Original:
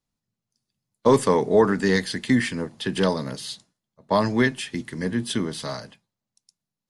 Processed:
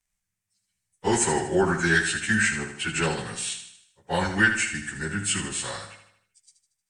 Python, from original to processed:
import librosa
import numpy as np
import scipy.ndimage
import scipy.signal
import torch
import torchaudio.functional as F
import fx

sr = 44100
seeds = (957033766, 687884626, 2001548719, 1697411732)

p1 = fx.pitch_bins(x, sr, semitones=-2.5)
p2 = fx.graphic_eq_10(p1, sr, hz=(125, 250, 500, 1000, 2000, 4000, 8000), db=(-9, -10, -8, -5, 8, -9, 10))
p3 = p2 + fx.echo_feedback(p2, sr, ms=77, feedback_pct=49, wet_db=-9.0, dry=0)
y = F.gain(torch.from_numpy(p3), 5.5).numpy()